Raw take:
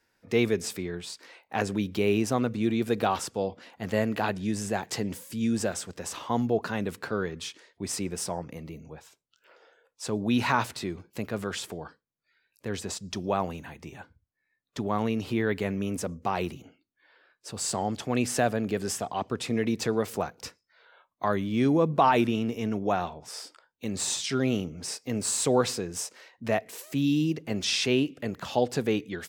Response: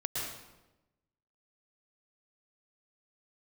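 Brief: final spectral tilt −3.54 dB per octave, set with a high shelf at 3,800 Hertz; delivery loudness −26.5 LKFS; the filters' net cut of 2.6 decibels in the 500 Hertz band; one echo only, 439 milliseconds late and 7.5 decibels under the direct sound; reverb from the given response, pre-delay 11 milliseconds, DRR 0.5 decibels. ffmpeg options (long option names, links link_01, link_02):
-filter_complex "[0:a]equalizer=frequency=500:width_type=o:gain=-3.5,highshelf=frequency=3800:gain=7.5,aecho=1:1:439:0.422,asplit=2[link_01][link_02];[1:a]atrim=start_sample=2205,adelay=11[link_03];[link_02][link_03]afir=irnorm=-1:irlink=0,volume=-5dB[link_04];[link_01][link_04]amix=inputs=2:normalize=0,volume=-1dB"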